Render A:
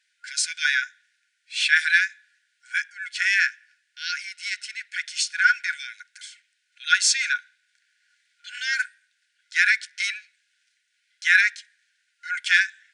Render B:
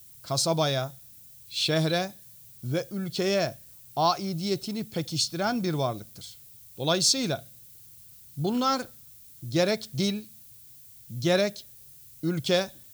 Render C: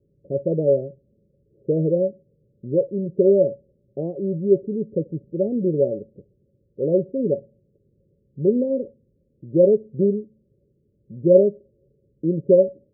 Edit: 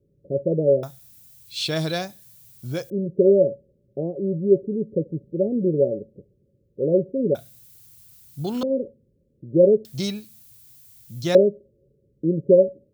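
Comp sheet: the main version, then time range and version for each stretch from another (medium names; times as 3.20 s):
C
0.83–2.90 s: from B
7.35–8.63 s: from B
9.85–11.35 s: from B
not used: A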